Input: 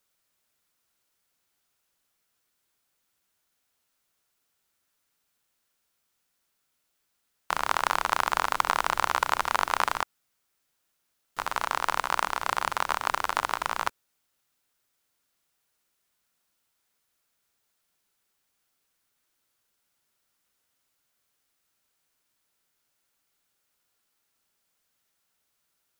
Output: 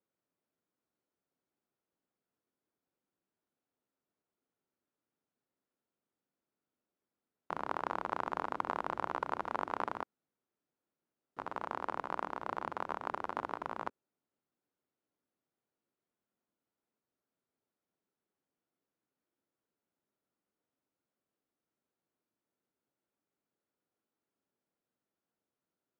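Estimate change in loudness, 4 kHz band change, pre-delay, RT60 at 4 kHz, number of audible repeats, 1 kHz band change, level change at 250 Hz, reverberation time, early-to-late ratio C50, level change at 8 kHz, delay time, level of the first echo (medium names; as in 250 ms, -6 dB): -11.5 dB, -22.0 dB, no reverb, no reverb, no echo, -10.5 dB, -0.5 dB, no reverb, no reverb, under -25 dB, no echo, no echo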